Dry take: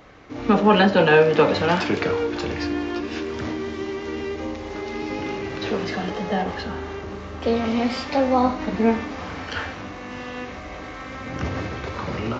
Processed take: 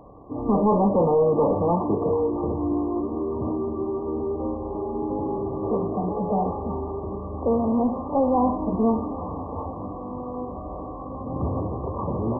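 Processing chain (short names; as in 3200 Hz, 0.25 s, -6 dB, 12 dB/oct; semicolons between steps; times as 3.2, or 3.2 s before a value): soft clip -17.5 dBFS, distortion -9 dB; brick-wall FIR low-pass 1200 Hz; gain +2.5 dB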